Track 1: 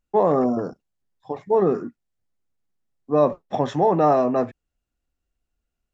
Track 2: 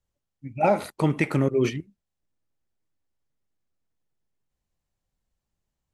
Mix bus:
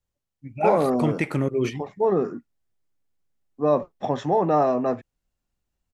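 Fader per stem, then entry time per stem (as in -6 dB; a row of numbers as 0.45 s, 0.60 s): -2.5 dB, -1.5 dB; 0.50 s, 0.00 s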